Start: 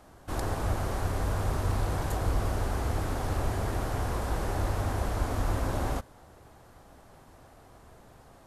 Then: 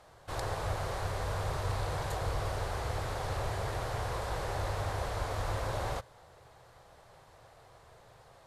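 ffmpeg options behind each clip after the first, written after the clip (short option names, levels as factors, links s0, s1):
-af "equalizer=f=125:t=o:w=1:g=8,equalizer=f=250:t=o:w=1:g=-10,equalizer=f=500:t=o:w=1:g=9,equalizer=f=1000:t=o:w=1:g=5,equalizer=f=2000:t=o:w=1:g=6,equalizer=f=4000:t=o:w=1:g=9,equalizer=f=8000:t=o:w=1:g=4,volume=0.355"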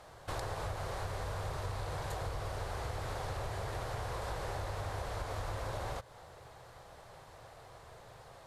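-af "acompressor=threshold=0.0112:ratio=6,volume=1.5"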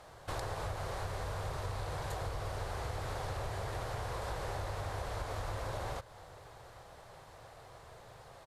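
-af "aecho=1:1:821:0.0794"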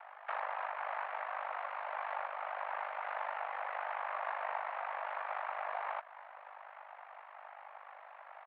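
-af "aeval=exprs='val(0)*sin(2*PI*25*n/s)':c=same,highpass=f=560:t=q:w=0.5412,highpass=f=560:t=q:w=1.307,lowpass=f=2500:t=q:w=0.5176,lowpass=f=2500:t=q:w=0.7071,lowpass=f=2500:t=q:w=1.932,afreqshift=110,volume=2.24"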